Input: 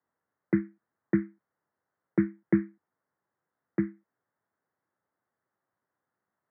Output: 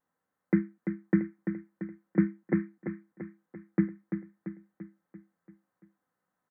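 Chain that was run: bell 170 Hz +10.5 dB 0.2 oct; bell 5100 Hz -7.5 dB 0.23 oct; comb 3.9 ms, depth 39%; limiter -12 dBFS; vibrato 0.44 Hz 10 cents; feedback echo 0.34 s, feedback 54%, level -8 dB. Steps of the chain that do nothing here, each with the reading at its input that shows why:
bell 5100 Hz: input band ends at 480 Hz

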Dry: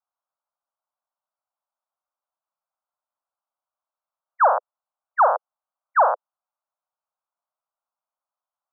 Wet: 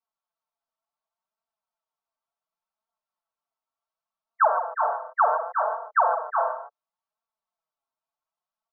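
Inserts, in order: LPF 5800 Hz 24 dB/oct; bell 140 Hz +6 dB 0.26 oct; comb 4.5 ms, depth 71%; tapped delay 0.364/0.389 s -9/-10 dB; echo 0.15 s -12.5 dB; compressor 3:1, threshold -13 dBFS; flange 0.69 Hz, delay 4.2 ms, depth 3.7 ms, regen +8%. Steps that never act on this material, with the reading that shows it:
LPF 5800 Hz: input band ends at 1800 Hz; bell 140 Hz: input band starts at 430 Hz

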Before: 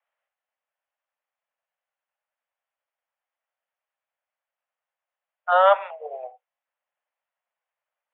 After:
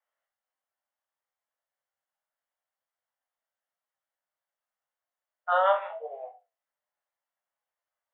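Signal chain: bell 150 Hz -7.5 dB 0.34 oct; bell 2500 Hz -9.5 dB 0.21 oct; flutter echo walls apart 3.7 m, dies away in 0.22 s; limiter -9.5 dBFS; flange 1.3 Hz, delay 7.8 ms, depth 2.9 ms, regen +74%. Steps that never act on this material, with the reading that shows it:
bell 150 Hz: input band starts at 430 Hz

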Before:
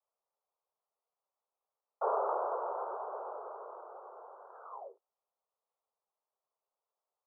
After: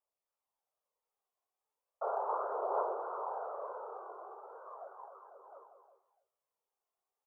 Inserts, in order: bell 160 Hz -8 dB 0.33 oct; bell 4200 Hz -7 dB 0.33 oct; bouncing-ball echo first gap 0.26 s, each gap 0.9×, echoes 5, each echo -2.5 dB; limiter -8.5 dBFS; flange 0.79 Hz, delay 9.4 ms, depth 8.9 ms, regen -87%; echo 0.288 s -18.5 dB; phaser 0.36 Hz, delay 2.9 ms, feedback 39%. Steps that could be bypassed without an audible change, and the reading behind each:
bell 160 Hz: input band starts at 320 Hz; bell 4200 Hz: input band ends at 1600 Hz; limiter -8.5 dBFS: input peak -19.0 dBFS

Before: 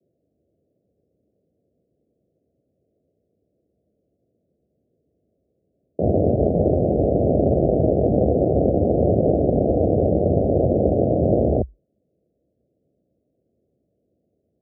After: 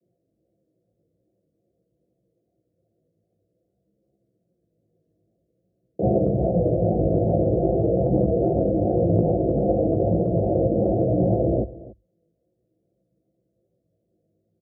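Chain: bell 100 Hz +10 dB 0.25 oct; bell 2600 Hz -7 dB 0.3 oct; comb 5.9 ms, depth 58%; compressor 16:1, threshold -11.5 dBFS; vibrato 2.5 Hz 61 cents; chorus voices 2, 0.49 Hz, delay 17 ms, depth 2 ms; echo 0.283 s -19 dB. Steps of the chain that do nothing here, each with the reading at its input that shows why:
bell 2600 Hz: input band ends at 810 Hz

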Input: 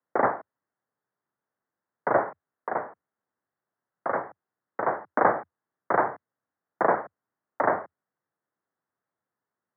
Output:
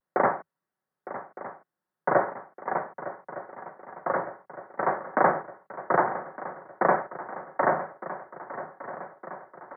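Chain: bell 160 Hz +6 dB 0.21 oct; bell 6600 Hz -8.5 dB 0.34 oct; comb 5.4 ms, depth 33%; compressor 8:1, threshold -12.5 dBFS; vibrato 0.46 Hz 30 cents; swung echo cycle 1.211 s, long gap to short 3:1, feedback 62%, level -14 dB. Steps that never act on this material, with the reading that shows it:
bell 6600 Hz: input band ends at 2300 Hz

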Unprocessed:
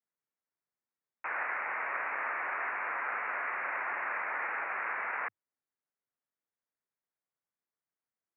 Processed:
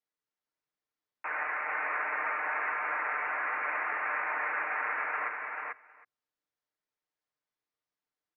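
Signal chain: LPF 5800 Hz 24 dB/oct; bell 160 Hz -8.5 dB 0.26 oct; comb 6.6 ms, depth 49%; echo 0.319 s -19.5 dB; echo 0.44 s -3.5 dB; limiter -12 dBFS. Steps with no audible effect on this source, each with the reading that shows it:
LPF 5800 Hz: input band ends at 2900 Hz; limiter -12 dBFS: input peak -20.5 dBFS

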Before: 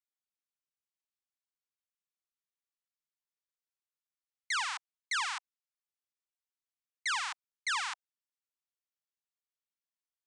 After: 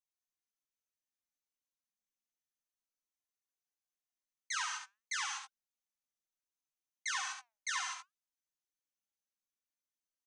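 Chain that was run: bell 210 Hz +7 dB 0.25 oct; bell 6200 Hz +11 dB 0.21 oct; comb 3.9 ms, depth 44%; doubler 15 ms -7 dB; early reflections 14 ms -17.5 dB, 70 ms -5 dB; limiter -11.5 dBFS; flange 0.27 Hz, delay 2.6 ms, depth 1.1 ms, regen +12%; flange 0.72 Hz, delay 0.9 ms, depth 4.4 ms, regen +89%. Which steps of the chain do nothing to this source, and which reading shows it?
bell 210 Hz: input band starts at 640 Hz; limiter -11.5 dBFS: input peak -16.0 dBFS

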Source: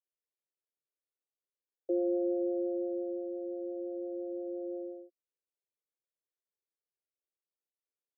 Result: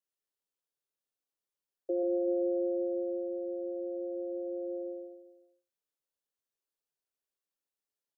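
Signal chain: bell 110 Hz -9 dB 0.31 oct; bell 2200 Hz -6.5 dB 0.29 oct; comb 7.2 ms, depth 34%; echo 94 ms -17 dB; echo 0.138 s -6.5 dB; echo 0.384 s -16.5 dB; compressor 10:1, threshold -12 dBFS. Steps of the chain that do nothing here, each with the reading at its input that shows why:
bell 110 Hz: input band starts at 320 Hz; bell 2200 Hz: input band ends at 720 Hz; compressor, threshold -12 dBFS: input peak -22.5 dBFS

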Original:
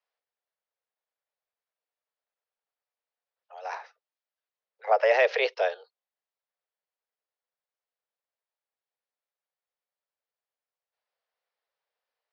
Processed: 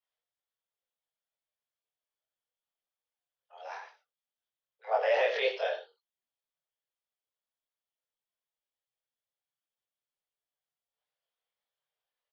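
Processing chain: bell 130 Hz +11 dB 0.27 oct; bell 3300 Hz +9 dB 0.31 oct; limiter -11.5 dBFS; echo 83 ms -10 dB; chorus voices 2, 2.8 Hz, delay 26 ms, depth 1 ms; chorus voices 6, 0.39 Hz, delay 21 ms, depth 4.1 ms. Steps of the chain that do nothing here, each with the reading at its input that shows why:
bell 130 Hz: input band starts at 360 Hz

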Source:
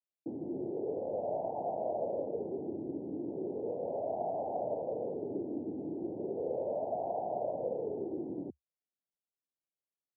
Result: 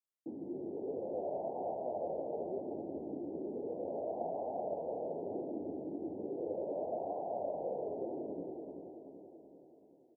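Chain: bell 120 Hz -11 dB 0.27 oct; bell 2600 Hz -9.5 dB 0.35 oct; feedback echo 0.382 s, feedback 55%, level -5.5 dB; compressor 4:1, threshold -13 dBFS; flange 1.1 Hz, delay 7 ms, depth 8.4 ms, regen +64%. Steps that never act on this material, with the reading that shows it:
bell 2600 Hz: input band ends at 1000 Hz; compressor, threshold -13 dBFS: input peak -22.0 dBFS

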